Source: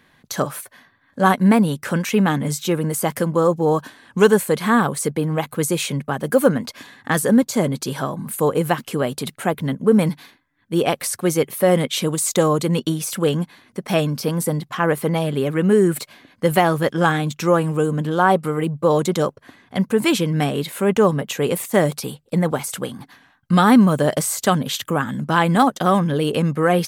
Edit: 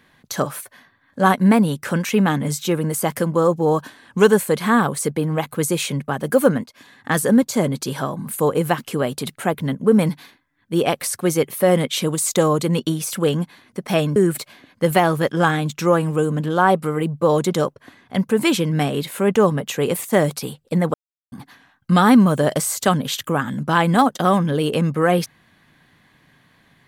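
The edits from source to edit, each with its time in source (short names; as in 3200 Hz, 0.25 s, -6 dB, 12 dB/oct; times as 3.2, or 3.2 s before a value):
6.64–7.14 fade in, from -18 dB
14.16–15.77 cut
22.55–22.93 mute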